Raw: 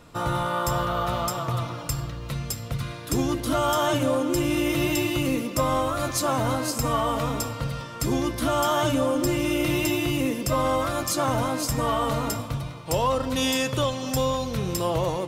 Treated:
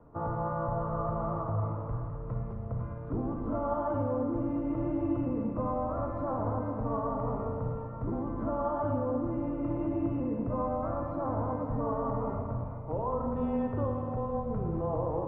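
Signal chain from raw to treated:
low-pass filter 1,100 Hz 24 dB per octave
brickwall limiter −20.5 dBFS, peak gain reduction 6 dB
frequency shifter −17 Hz
four-comb reverb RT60 1.7 s, DRR 2 dB
level −5 dB

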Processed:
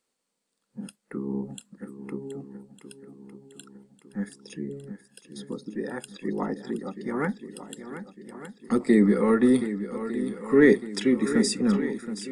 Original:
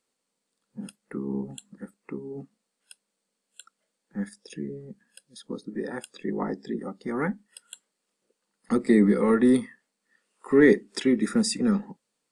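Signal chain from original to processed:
feedback echo with a long and a short gap by turns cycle 1,204 ms, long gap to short 1.5 to 1, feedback 48%, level −11.5 dB

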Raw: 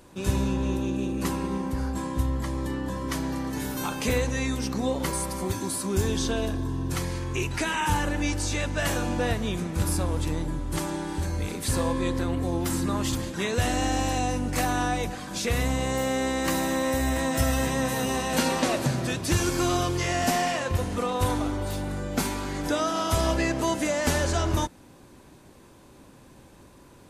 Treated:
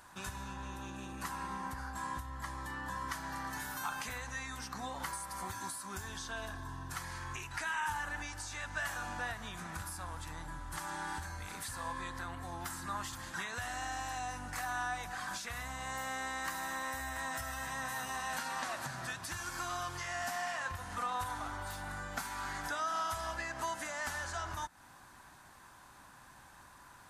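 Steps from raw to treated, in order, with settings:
guitar amp tone stack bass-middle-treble 5-5-5
downward compressor, threshold −46 dBFS, peak gain reduction 14 dB
flat-topped bell 1,100 Hz +12.5 dB
level +4 dB

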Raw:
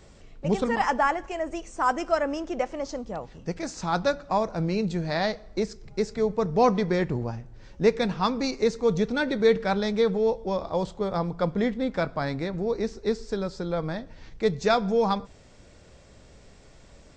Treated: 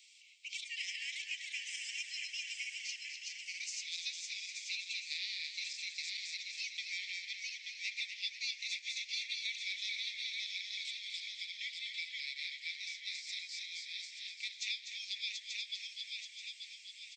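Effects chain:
feedback delay that plays each chunk backwards 441 ms, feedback 61%, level −3 dB
Butterworth high-pass 2,200 Hz 96 dB per octave
high-shelf EQ 4,200 Hz −9.5 dB
downward compressor 3 to 1, threshold −44 dBFS, peak gain reduction 9 dB
echo with shifted repeats 247 ms, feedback 52%, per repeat −54 Hz, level −8 dB
level +6 dB

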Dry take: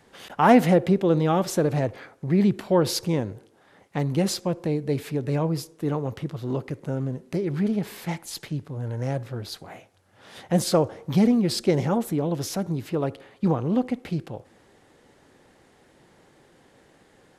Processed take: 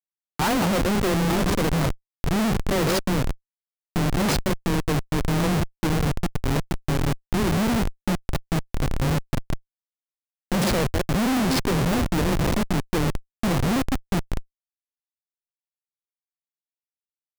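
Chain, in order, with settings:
delay that plays each chunk backwards 136 ms, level −11.5 dB
frequency shifter +18 Hz
comparator with hysteresis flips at −25.5 dBFS
level +4 dB

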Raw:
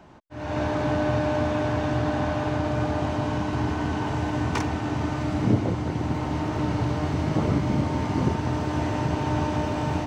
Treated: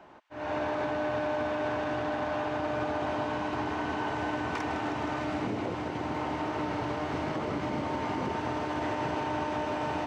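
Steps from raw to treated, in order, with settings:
bass and treble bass −14 dB, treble −9 dB
brickwall limiter −23 dBFS, peak gain reduction 8 dB
delay with a high-pass on its return 157 ms, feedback 83%, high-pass 2,200 Hz, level −9 dB

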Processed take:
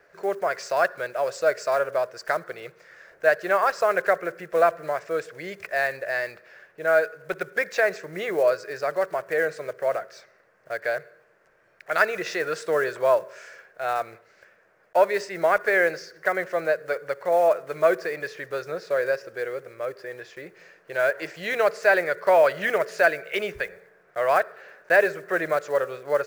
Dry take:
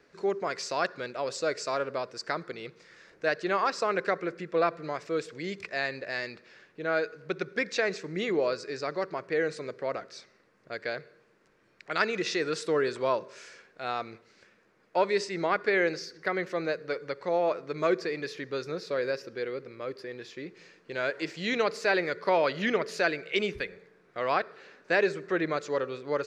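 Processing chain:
one scale factor per block 5 bits
graphic EQ with 15 bands 250 Hz −11 dB, 630 Hz +11 dB, 1,600 Hz +8 dB, 4,000 Hz −5 dB

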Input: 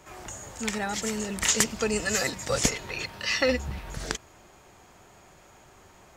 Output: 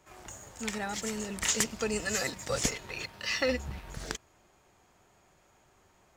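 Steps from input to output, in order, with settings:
leveller curve on the samples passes 1
level −8.5 dB

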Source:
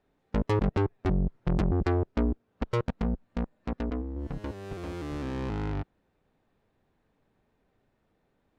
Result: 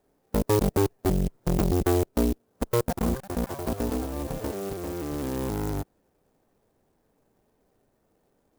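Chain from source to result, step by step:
parametric band 490 Hz +6 dB 2.1 octaves
0:02.77–0:05.46: delay with pitch and tempo change per echo 131 ms, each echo +7 semitones, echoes 3, each echo −6 dB
converter with an unsteady clock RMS 0.072 ms

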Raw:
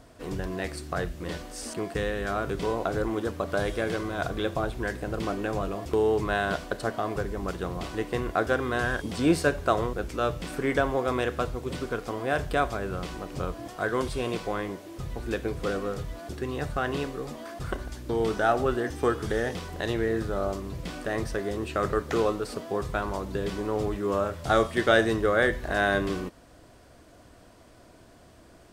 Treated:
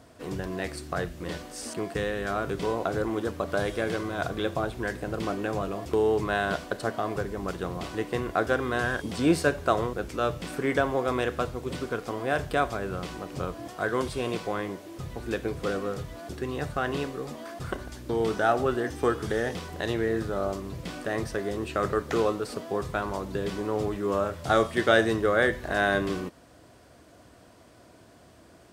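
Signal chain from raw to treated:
high-pass filter 70 Hz

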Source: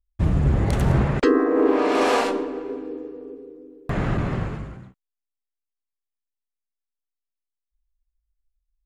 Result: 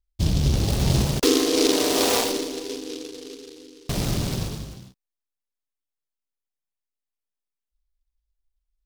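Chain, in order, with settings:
short delay modulated by noise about 4,200 Hz, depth 0.18 ms
level −1.5 dB

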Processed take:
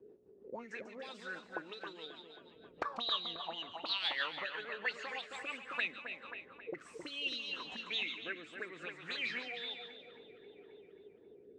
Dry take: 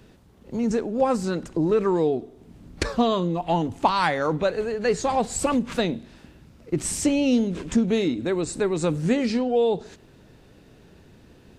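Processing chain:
envelope filter 390–4,000 Hz, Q 9.4, up, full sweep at −16.5 dBFS
echo with a time of its own for lows and highs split 2,900 Hz, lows 268 ms, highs 143 ms, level −6 dB
rotating-speaker cabinet horn 6.3 Hz, later 0.65 Hz, at 0:05.28
level +7 dB

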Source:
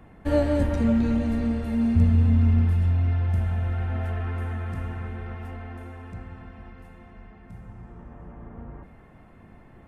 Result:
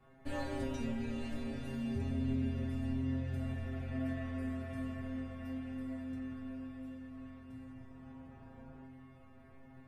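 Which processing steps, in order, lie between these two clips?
dynamic equaliser 1,100 Hz, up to −4 dB, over −50 dBFS, Q 1.7
leveller curve on the samples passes 1
stiff-string resonator 130 Hz, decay 0.63 s, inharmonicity 0.002
on a send: feedback delay with all-pass diffusion 968 ms, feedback 55%, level −11.5 dB
on the sum: level +3.5 dB

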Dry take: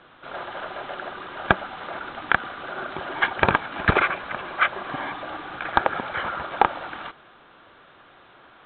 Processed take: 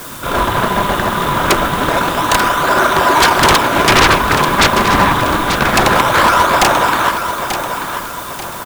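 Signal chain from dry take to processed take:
notch filter 780 Hz, Q 14
hollow resonant body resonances 1,000/3,600 Hz, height 12 dB
in parallel at −4 dB: sample-and-hold swept by an LFO 31×, swing 160% 0.26 Hz
on the sum: sine wavefolder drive 17 dB, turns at −0.5 dBFS
background noise blue −26 dBFS
on a send: repeating echo 887 ms, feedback 38%, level −8.5 dB
on the sum: highs frequency-modulated by the lows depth 0.36 ms
level −4.5 dB

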